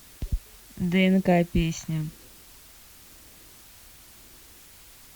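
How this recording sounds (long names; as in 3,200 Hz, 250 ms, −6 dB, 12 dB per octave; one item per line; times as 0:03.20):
phaser sweep stages 2, 0.98 Hz, lowest notch 430–1,200 Hz
a quantiser's noise floor 10 bits, dither triangular
Opus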